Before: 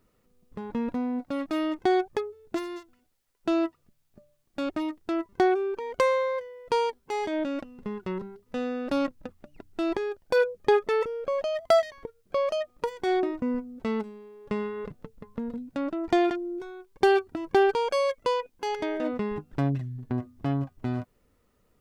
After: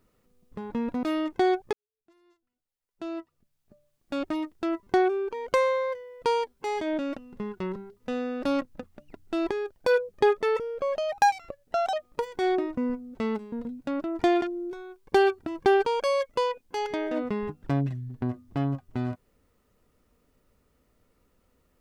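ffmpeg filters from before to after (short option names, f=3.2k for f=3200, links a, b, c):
-filter_complex "[0:a]asplit=6[a][b][c][d][e][f];[a]atrim=end=1.032[g];[b]atrim=start=1.488:end=2.19,asetpts=PTS-STARTPTS,afade=t=out:st=0.698:d=0.004:c=hsin[h];[c]atrim=start=2.19:end=11.584,asetpts=PTS-STARTPTS,afade=t=in:d=2.45:c=qua[i];[d]atrim=start=11.58:end=12.58,asetpts=PTS-STARTPTS,asetrate=54243,aresample=44100[j];[e]atrim=start=12.576:end=14.172[k];[f]atrim=start=15.408[l];[h][i]concat=n=2:v=0:a=1[m];[g][m]acrossfade=d=0.004:c1=hsin:c2=hsin[n];[n][j]acrossfade=d=0.004:c1=hsin:c2=hsin[o];[o][k]acrossfade=d=0.004:c1=hsin:c2=hsin[p];[p][l]acrossfade=d=0.004:c1=hsin:c2=hsin"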